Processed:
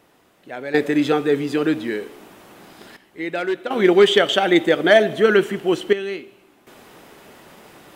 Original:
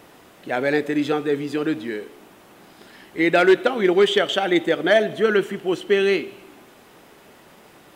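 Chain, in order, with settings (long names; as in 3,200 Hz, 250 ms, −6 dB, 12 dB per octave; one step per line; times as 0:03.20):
gate pattern "....xxxxxxxxxxxx" 81 BPM −12 dB
level +3.5 dB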